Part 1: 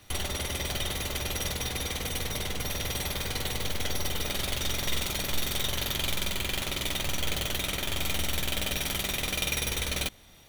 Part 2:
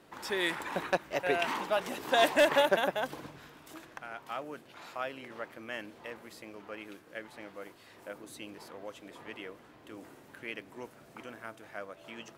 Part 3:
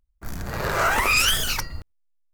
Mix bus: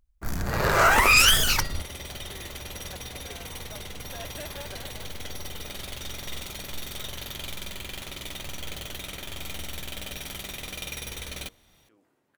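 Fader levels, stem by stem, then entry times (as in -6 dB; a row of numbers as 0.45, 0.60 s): -6.5, -18.0, +2.5 dB; 1.40, 2.00, 0.00 s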